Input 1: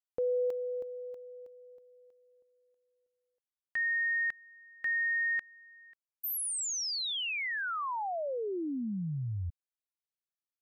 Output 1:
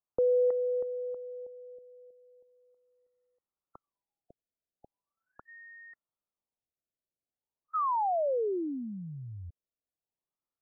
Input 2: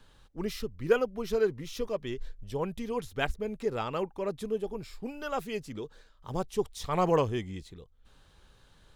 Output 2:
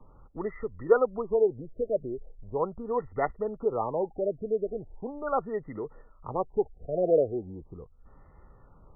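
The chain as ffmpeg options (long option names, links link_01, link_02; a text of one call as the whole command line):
ffmpeg -i in.wav -filter_complex "[0:a]asuperstop=centerf=1600:order=8:qfactor=4.8,acrossover=split=360|560|5700[link_01][link_02][link_03][link_04];[link_01]acompressor=threshold=-48dB:ratio=12:attack=26:release=118:knee=6:detection=peak[link_05];[link_03]aemphasis=mode=reproduction:type=50fm[link_06];[link_05][link_02][link_06][link_04]amix=inputs=4:normalize=0,afftfilt=real='re*lt(b*sr/1024,690*pow(2100/690,0.5+0.5*sin(2*PI*0.39*pts/sr)))':imag='im*lt(b*sr/1024,690*pow(2100/690,0.5+0.5*sin(2*PI*0.39*pts/sr)))':win_size=1024:overlap=0.75,volume=6dB" out.wav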